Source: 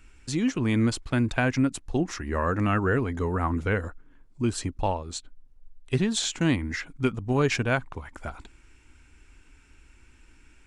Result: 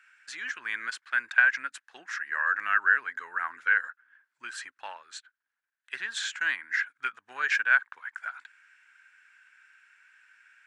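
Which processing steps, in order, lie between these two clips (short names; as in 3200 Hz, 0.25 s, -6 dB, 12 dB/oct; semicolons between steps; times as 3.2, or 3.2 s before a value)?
resonant high-pass 1600 Hz, resonance Q 6.9; high shelf 5200 Hz -8 dB; gain -4 dB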